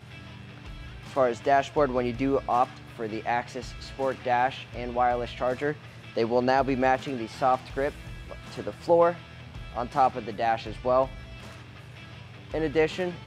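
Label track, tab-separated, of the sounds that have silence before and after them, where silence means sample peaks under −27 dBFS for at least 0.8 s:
1.170000	11.050000	sound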